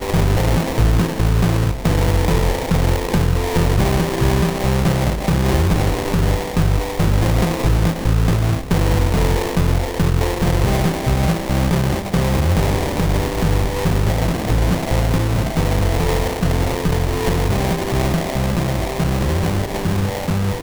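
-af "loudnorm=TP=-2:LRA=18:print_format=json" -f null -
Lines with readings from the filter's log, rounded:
"input_i" : "-18.6",
"input_tp" : "-5.4",
"input_lra" : "2.2",
"input_thresh" : "-28.6",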